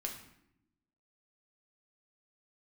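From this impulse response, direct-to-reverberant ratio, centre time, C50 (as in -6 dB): 0.5 dB, 25 ms, 7.0 dB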